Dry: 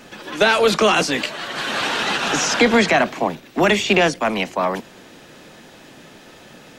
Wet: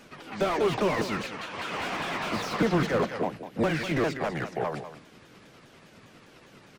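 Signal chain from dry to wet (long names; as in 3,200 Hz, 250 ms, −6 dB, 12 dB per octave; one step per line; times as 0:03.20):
pitch shifter swept by a sawtooth −8 semitones, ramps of 202 ms
single-tap delay 196 ms −12 dB
slew-rate limiting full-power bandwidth 150 Hz
level −8 dB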